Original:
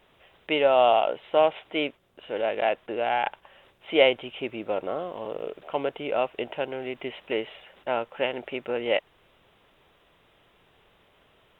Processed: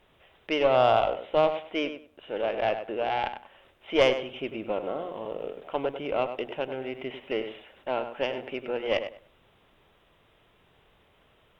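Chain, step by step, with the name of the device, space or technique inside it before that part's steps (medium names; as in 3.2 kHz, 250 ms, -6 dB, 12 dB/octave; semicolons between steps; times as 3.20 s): bass shelf 170 Hz +6.5 dB; hum notches 60/120/180/240 Hz; rockabilly slapback (valve stage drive 10 dB, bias 0.55; tape echo 98 ms, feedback 22%, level -8.5 dB, low-pass 3 kHz)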